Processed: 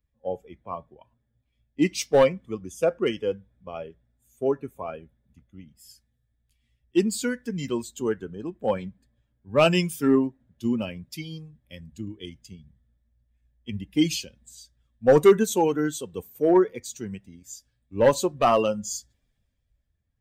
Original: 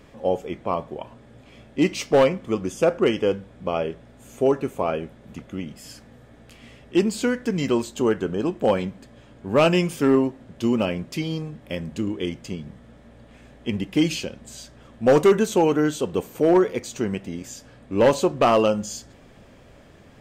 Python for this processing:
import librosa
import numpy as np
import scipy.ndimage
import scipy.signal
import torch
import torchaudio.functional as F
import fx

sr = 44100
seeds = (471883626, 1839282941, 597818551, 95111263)

y = fx.bin_expand(x, sr, power=1.5)
y = fx.high_shelf(y, sr, hz=7300.0, db=7.5)
y = fx.band_widen(y, sr, depth_pct=40)
y = y * librosa.db_to_amplitude(-1.5)